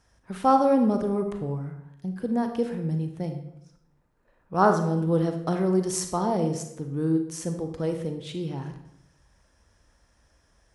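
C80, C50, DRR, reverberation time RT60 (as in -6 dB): 10.5 dB, 7.5 dB, 5.5 dB, 0.80 s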